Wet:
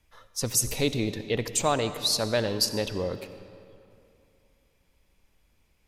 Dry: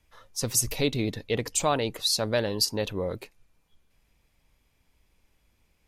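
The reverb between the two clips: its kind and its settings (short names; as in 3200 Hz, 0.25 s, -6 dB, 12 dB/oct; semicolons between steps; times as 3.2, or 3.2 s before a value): digital reverb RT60 2.7 s, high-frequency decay 0.7×, pre-delay 40 ms, DRR 11 dB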